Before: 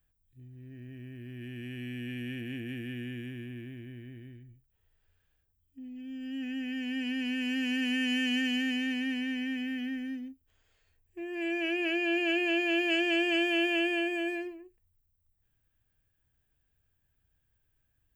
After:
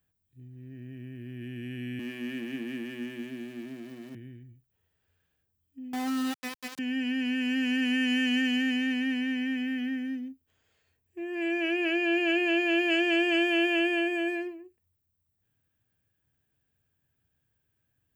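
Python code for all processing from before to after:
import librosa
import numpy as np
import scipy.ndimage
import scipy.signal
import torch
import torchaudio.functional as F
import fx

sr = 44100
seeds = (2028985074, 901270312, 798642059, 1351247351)

y = fx.chain(x, sr, fx.zero_step(step_db=-46.0),
    fx.ellip_highpass(hz=150.0, order=4, stop_db=40),
    fx.hum_notches(base_hz=50, count=5), at=(1.99, 4.15))
y = fx.chain(y, sr, fx.over_compress(threshold_db=-39.0, ratio=-0.5),
    fx.leveller(passes=1),
    fx.quant_dither(seeds[0], bits=6, dither='none'), at=(5.93, 6.79))
y = fx.dynamic_eq(y, sr, hz=1300.0, q=0.91, threshold_db=-47.0, ratio=4.0, max_db=4)
y = scipy.signal.sosfilt(scipy.signal.butter(2, 120.0, 'highpass', fs=sr, output='sos'), y)
y = fx.low_shelf(y, sr, hz=350.0, db=5.5)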